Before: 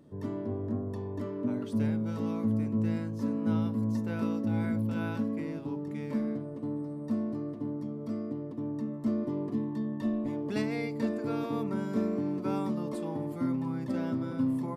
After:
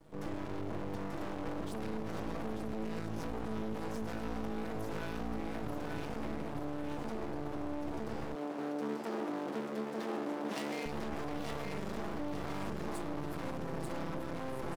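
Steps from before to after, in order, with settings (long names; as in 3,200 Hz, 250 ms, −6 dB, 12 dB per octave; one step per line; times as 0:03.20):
lower of the sound and its delayed copy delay 6.1 ms
repeating echo 887 ms, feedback 44%, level −4 dB
half-wave rectification
0:08.35–0:10.86: high-pass filter 220 Hz 24 dB per octave
brickwall limiter −31.5 dBFS, peak gain reduction 11.5 dB
high-shelf EQ 4,300 Hz +5.5 dB
level +3.5 dB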